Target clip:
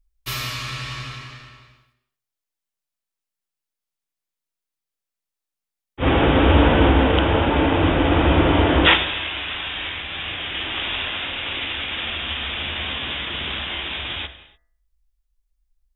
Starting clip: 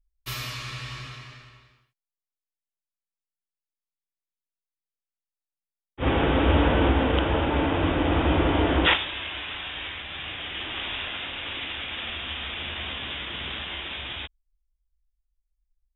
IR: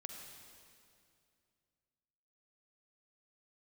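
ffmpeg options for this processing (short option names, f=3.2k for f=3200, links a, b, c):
-filter_complex "[0:a]bandreject=f=61.21:t=h:w=4,bandreject=f=122.42:t=h:w=4,bandreject=f=183.63:t=h:w=4,bandreject=f=244.84:t=h:w=4,bandreject=f=306.05:t=h:w=4,bandreject=f=367.26:t=h:w=4,bandreject=f=428.47:t=h:w=4,bandreject=f=489.68:t=h:w=4,bandreject=f=550.89:t=h:w=4,bandreject=f=612.1:t=h:w=4,bandreject=f=673.31:t=h:w=4,bandreject=f=734.52:t=h:w=4,bandreject=f=795.73:t=h:w=4,bandreject=f=856.94:t=h:w=4,bandreject=f=918.15:t=h:w=4,bandreject=f=979.36:t=h:w=4,bandreject=f=1.04057k:t=h:w=4,bandreject=f=1.10178k:t=h:w=4,bandreject=f=1.16299k:t=h:w=4,bandreject=f=1.2242k:t=h:w=4,bandreject=f=1.28541k:t=h:w=4,bandreject=f=1.34662k:t=h:w=4,bandreject=f=1.40783k:t=h:w=4,bandreject=f=1.46904k:t=h:w=4,bandreject=f=1.53025k:t=h:w=4,bandreject=f=1.59146k:t=h:w=4,bandreject=f=1.65267k:t=h:w=4,bandreject=f=1.71388k:t=h:w=4,bandreject=f=1.77509k:t=h:w=4,bandreject=f=1.8363k:t=h:w=4,bandreject=f=1.89751k:t=h:w=4,bandreject=f=1.95872k:t=h:w=4,bandreject=f=2.01993k:t=h:w=4,bandreject=f=2.08114k:t=h:w=4,asplit=2[a][b];[1:a]atrim=start_sample=2205,afade=t=out:st=0.35:d=0.01,atrim=end_sample=15876[c];[b][c]afir=irnorm=-1:irlink=0,volume=-2dB[d];[a][d]amix=inputs=2:normalize=0,volume=3dB"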